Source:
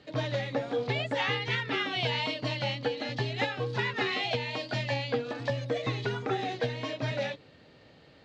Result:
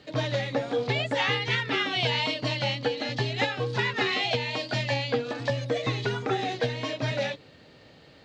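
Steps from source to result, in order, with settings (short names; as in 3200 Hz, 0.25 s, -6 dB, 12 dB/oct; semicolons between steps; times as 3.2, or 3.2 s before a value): high shelf 5300 Hz +6 dB; gain +3 dB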